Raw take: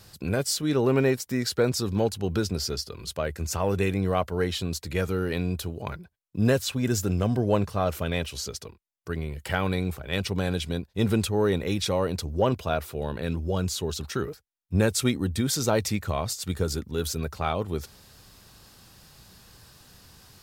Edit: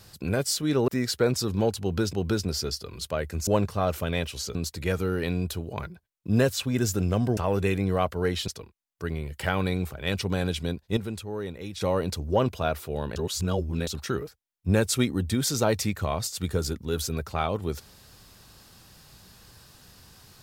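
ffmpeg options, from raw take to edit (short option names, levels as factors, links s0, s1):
-filter_complex "[0:a]asplit=11[s0][s1][s2][s3][s4][s5][s6][s7][s8][s9][s10];[s0]atrim=end=0.882[s11];[s1]atrim=start=1.258:end=2.512[s12];[s2]atrim=start=2.188:end=3.532[s13];[s3]atrim=start=7.458:end=8.542[s14];[s4]atrim=start=4.638:end=7.462[s15];[s5]atrim=start=3.528:end=4.642[s16];[s6]atrim=start=8.538:end=11.032[s17];[s7]atrim=start=11.028:end=11.872,asetpts=PTS-STARTPTS,volume=0.316[s18];[s8]atrim=start=11.868:end=13.222[s19];[s9]atrim=start=13.218:end=13.932,asetpts=PTS-STARTPTS,areverse[s20];[s10]atrim=start=13.928[s21];[s11][s12]acrossfade=d=0.004:c1=hsin:c2=hsin[s22];[s22][s13]acrossfade=d=0.004:c1=hsin:c2=hsin[s23];[s23][s14]acrossfade=d=0.004:c1=hsin:c2=hsin[s24];[s24][s15]acrossfade=d=0.004:c1=hsin:c2=hsin[s25];[s25][s16]acrossfade=d=0.004:c1=hsin:c2=hsin[s26];[s26][s17]acrossfade=d=0.004:c1=hsin:c2=hsin[s27];[s27][s18]acrossfade=d=0.004:c1=hsin:c2=hsin[s28];[s28][s19]acrossfade=d=0.004:c1=hsin:c2=hsin[s29];[s29][s20]acrossfade=d=0.004:c1=hsin:c2=hsin[s30];[s30][s21]acrossfade=d=0.004:c1=hsin:c2=hsin"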